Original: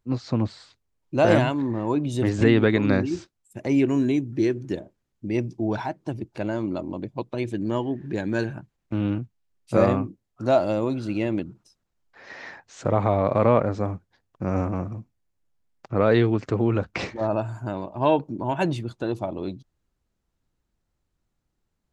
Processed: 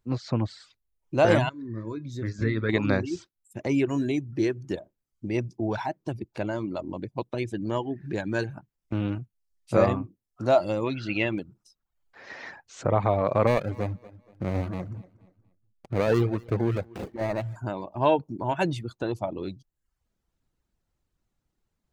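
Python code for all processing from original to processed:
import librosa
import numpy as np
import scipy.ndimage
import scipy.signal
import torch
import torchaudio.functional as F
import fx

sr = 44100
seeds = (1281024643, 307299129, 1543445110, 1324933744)

y = fx.chain(x, sr, fx.fixed_phaser(hz=2900.0, stages=6),
    fx.comb_fb(f0_hz=110.0, decay_s=0.31, harmonics='all', damping=0.0, mix_pct=60), at=(1.49, 2.69))
y = fx.chain(y, sr, fx.lowpass(hz=6000.0, slope=24),
    fx.peak_eq(hz=2500.0, db=10.5, octaves=1.4), at=(10.84, 11.38))
y = fx.chain(y, sr, fx.median_filter(points=41),
    fx.echo_feedback(ms=238, feedback_pct=30, wet_db=-17), at=(13.47, 17.56))
y = fx.dereverb_blind(y, sr, rt60_s=0.54)
y = fx.dynamic_eq(y, sr, hz=250.0, q=1.2, threshold_db=-34.0, ratio=4.0, max_db=-4)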